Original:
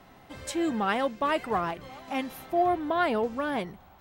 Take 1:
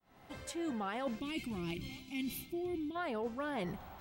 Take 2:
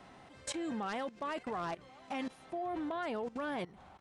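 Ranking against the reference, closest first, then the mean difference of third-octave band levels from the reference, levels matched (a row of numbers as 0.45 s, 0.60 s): 2, 1; 4.0 dB, 6.5 dB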